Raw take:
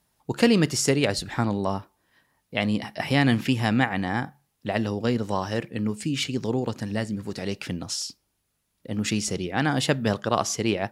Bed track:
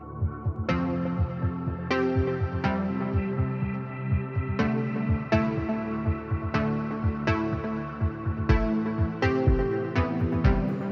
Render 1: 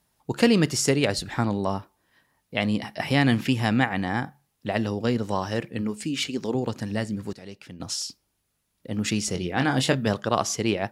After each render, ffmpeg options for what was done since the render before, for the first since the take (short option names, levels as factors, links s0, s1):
-filter_complex "[0:a]asettb=1/sr,asplit=3[s0][s1][s2];[s0]atrim=end=5.814[s3];[s1]atrim=start=5.81:end=6.55,asetpts=PTS-STARTPTS,afade=t=in:d=0.004:c=qsin,afade=t=out:st=0.736:d=0.004:c=qsin,equalizer=f=120:w=2.6:g=-13[s4];[s2]atrim=start=6.546[s5];[s3][s4]acrossfade=d=0.004:c1=hsin:c2=qsin[s6];[s6][s5]acrossfade=d=0.004:c1=qsin:c2=hsin,asettb=1/sr,asplit=3[s7][s8][s9];[s7]atrim=end=9.324[s10];[s8]atrim=start=9.32:end=10.07,asetpts=PTS-STARTPTS,afade=t=in:d=0.004:c=qsin,afade=t=out:st=0.746:d=0.004:c=qsin,asplit=2[s11][s12];[s12]adelay=23,volume=0.422[s13];[s11][s13]amix=inputs=2:normalize=0,atrim=end_sample=33075[s14];[s9]atrim=start=10.066[s15];[s10][s14]acrossfade=d=0.004:c1=hsin:c2=qsin[s16];[s16][s15]acrossfade=d=0.004:c1=qsin:c2=hsin,asplit=3[s17][s18][s19];[s17]atrim=end=7.332[s20];[s18]atrim=start=7.328:end=7.802,asetpts=PTS-STARTPTS,volume=0.266[s21];[s19]atrim=start=7.798[s22];[s20][s21]acrossfade=d=0.004:c1=hsin:c2=hsin[s23];[s23][s22]acrossfade=d=0.004:c1=hsin:c2=hsin"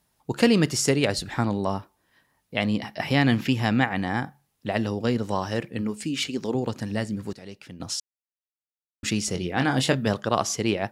-filter_complex "[0:a]asettb=1/sr,asplit=3[s0][s1][s2];[s0]atrim=end=2.644[s3];[s1]atrim=start=2.64:end=3.96,asetpts=PTS-STARTPTS,afade=t=in:d=0.004:c=qsin,afade=t=out:st=1.316:d=0.004:c=qsin,equalizer=f=9200:w=3.5:g=-9.5[s4];[s2]atrim=start=3.956[s5];[s3][s4]acrossfade=d=0.004:c1=hsin:c2=qsin[s6];[s6][s5]acrossfade=d=0.004:c1=qsin:c2=hsin,asplit=3[s7][s8][s9];[s7]atrim=end=8,asetpts=PTS-STARTPTS,afade=t=out:st=7.996:d=0.004:c=hsin[s10];[s8]atrim=start=8:end=9.03,asetpts=PTS-STARTPTS,volume=0[s11];[s9]atrim=start=9.03,asetpts=PTS-STARTPTS,afade=t=in:d=0.004:c=hsin[s12];[s10][s11][s12]concat=n=3:v=0:a=1"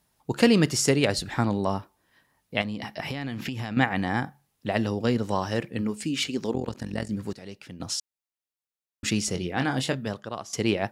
-filter_complex "[0:a]asettb=1/sr,asplit=3[s0][s1][s2];[s0]atrim=end=2.614[s3];[s1]atrim=start=2.61:end=3.77,asetpts=PTS-STARTPTS,afade=t=in:d=0.004:c=qsin,afade=t=out:st=1.156:d=0.004:c=qsin,acompressor=threshold=0.0447:ratio=16:attack=3.2:release=140:knee=1:detection=peak[s4];[s2]atrim=start=3.766[s5];[s3][s4]acrossfade=d=0.004:c1=hsin:c2=qsin[s6];[s6][s5]acrossfade=d=0.004:c1=qsin:c2=hsin,asplit=3[s7][s8][s9];[s7]afade=t=out:st=6.51:d=0.02[s10];[s8]tremolo=f=44:d=0.824,afade=t=in:st=6.51:d=0.02,afade=t=out:st=7.09:d=0.02[s11];[s9]afade=t=in:st=7.09:d=0.02[s12];[s10][s11][s12]amix=inputs=3:normalize=0,asplit=2[s13][s14];[s13]atrim=end=10.53,asetpts=PTS-STARTPTS,afade=t=out:st=9.19:d=1.34:silence=0.149624[s15];[s14]atrim=start=10.53,asetpts=PTS-STARTPTS,afade=t=in:d=0.004:c=hsin:silence=0.149624[s16];[s15][s16]concat=n=2:v=0:a=1"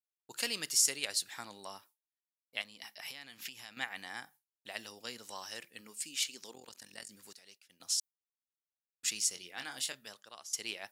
-af "agate=range=0.0224:threshold=0.0126:ratio=3:detection=peak,aderivative"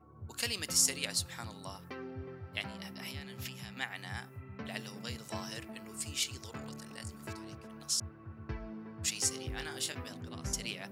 -filter_complex "[1:a]volume=0.112[s0];[0:a][s0]amix=inputs=2:normalize=0"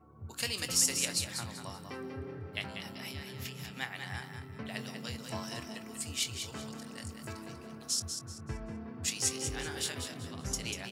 -filter_complex "[0:a]asplit=2[s0][s1];[s1]adelay=23,volume=0.251[s2];[s0][s2]amix=inputs=2:normalize=0,asplit=5[s3][s4][s5][s6][s7];[s4]adelay=192,afreqshift=31,volume=0.447[s8];[s5]adelay=384,afreqshift=62,volume=0.138[s9];[s6]adelay=576,afreqshift=93,volume=0.0432[s10];[s7]adelay=768,afreqshift=124,volume=0.0133[s11];[s3][s8][s9][s10][s11]amix=inputs=5:normalize=0"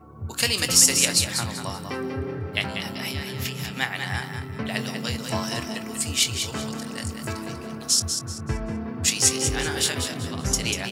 -af "volume=3.98,alimiter=limit=0.794:level=0:latency=1"